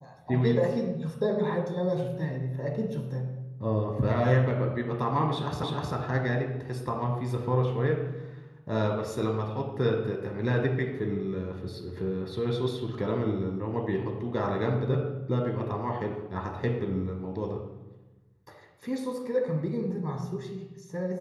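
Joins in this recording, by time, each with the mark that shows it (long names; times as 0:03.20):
0:05.63: the same again, the last 0.31 s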